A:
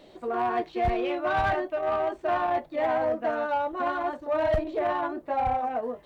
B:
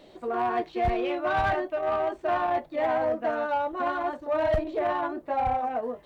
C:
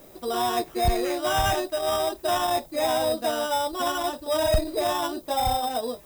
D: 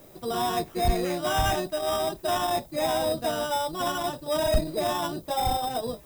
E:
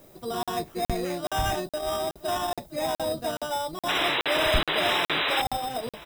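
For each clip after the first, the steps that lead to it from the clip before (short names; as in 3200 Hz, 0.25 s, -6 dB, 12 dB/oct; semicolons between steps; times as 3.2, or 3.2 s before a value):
nothing audible
low shelf 78 Hz +7.5 dB; sample-and-hold 10×; added noise violet -56 dBFS; gain +1.5 dB
octaver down 1 oct, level -2 dB; gain -2 dB
painted sound noise, 3.88–5.42, 270–4000 Hz -24 dBFS; echo 0.98 s -20 dB; crackling interface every 0.42 s, samples 2048, zero, from 0.43; gain -2 dB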